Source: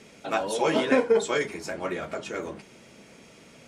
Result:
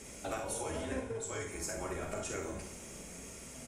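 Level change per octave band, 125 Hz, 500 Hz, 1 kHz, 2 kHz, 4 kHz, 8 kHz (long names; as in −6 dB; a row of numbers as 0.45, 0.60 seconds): −1.5, −14.5, −12.5, −13.0, −12.5, +0.5 decibels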